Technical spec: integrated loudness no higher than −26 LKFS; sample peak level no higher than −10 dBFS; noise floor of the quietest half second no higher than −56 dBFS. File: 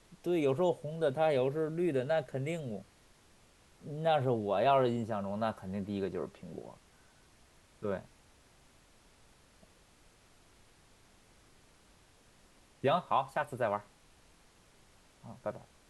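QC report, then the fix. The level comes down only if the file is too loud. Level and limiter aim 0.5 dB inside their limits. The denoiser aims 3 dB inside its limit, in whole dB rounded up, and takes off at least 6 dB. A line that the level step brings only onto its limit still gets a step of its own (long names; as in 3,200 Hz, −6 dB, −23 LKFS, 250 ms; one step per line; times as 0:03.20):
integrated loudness −33.5 LKFS: in spec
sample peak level −16.5 dBFS: in spec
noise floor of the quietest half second −63 dBFS: in spec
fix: no processing needed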